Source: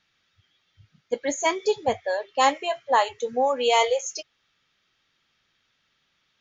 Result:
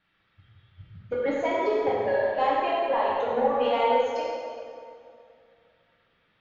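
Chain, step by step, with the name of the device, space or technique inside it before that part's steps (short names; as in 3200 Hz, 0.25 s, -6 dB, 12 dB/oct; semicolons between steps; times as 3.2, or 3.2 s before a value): drum-bus smash (transient shaper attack +7 dB, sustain +2 dB; compressor 12:1, threshold -22 dBFS, peak gain reduction 12 dB; soft clip -20.5 dBFS, distortion -15 dB); air absorption 400 m; plate-style reverb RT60 2.4 s, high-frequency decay 0.7×, DRR -6.5 dB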